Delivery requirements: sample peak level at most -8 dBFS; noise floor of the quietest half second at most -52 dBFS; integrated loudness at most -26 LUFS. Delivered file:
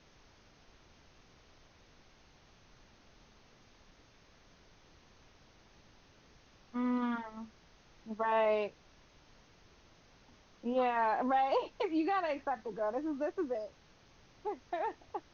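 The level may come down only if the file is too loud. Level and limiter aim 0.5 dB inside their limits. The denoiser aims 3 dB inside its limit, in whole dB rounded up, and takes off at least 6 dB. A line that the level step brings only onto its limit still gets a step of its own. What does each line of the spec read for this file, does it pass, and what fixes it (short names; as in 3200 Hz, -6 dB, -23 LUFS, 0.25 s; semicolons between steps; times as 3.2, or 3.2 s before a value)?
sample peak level -20.5 dBFS: OK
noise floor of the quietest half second -63 dBFS: OK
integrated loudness -34.5 LUFS: OK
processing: none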